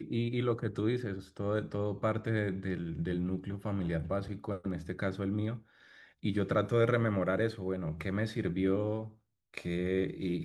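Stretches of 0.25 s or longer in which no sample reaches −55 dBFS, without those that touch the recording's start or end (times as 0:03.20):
0:09.15–0:09.54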